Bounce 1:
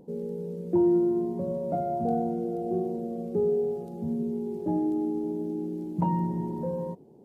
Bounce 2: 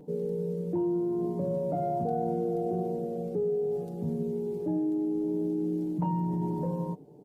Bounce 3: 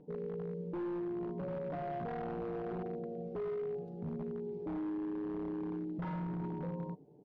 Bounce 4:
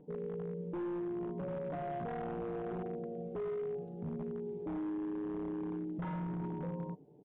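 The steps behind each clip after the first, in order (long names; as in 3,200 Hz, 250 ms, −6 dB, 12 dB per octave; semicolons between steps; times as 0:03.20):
comb filter 6.7 ms, depth 56%; in parallel at +1.5 dB: compressor whose output falls as the input rises −30 dBFS, ratio −1; on the sum: level −7.5 dB
wave folding −25.5 dBFS; high-frequency loss of the air 230 metres; level −7.5 dB
downsampling to 8,000 Hz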